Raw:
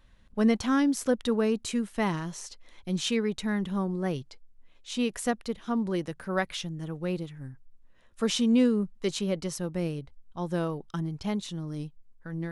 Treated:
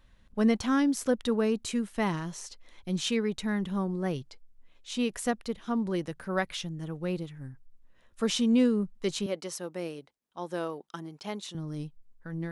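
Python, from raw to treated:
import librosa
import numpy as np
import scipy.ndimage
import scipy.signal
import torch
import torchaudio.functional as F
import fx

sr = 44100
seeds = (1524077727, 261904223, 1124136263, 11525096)

y = fx.highpass(x, sr, hz=330.0, slope=12, at=(9.26, 11.55))
y = y * librosa.db_to_amplitude(-1.0)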